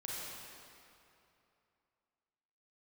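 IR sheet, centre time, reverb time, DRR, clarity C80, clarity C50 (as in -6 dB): 0.173 s, 2.8 s, -6.0 dB, -2.0 dB, -4.0 dB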